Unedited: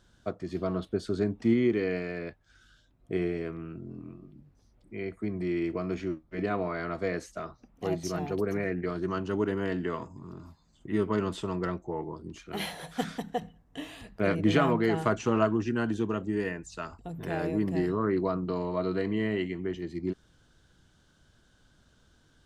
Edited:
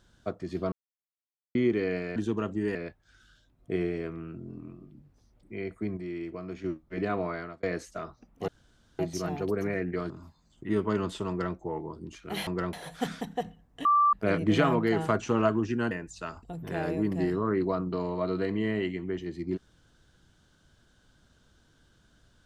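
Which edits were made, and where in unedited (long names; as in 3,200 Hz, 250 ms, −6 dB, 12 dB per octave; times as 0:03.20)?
0:00.72–0:01.55: silence
0:05.38–0:06.05: clip gain −6.5 dB
0:06.71–0:07.04: fade out
0:07.89: splice in room tone 0.51 s
0:09.00–0:10.33: remove
0:11.52–0:11.78: duplicate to 0:12.70
0:13.82–0:14.10: beep over 1,170 Hz −18.5 dBFS
0:15.88–0:16.47: move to 0:02.16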